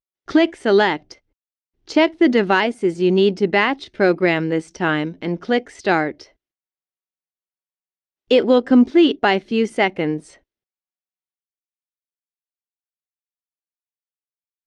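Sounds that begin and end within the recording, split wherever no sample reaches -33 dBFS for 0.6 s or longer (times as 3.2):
1.89–6.22
8.31–10.2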